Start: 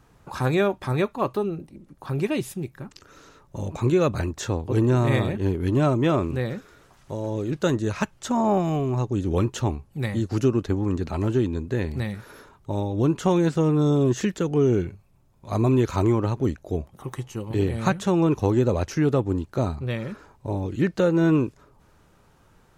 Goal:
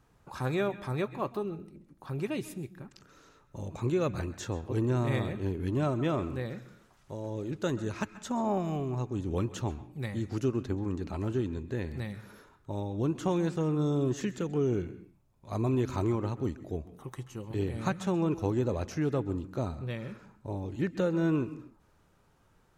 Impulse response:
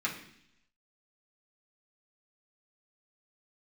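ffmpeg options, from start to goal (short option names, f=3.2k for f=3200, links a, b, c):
-filter_complex "[0:a]asplit=2[a][b];[1:a]atrim=start_sample=2205,afade=t=out:st=0.22:d=0.01,atrim=end_sample=10143,adelay=130[c];[b][c]afir=irnorm=-1:irlink=0,volume=-20dB[d];[a][d]amix=inputs=2:normalize=0,volume=-8.5dB"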